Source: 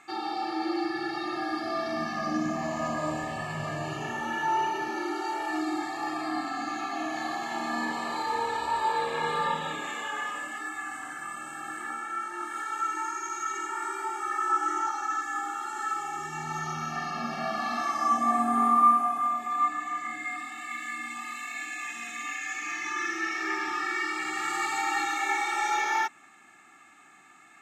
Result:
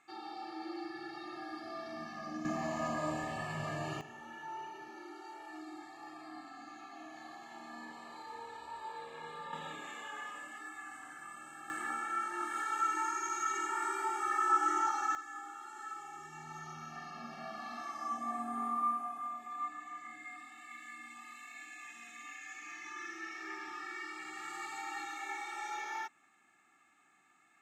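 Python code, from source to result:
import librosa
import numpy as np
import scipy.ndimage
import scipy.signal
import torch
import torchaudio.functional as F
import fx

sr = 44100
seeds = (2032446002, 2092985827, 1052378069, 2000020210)

y = fx.gain(x, sr, db=fx.steps((0.0, -13.0), (2.45, -5.5), (4.01, -17.5), (9.53, -11.0), (11.7, -2.5), (15.15, -13.5)))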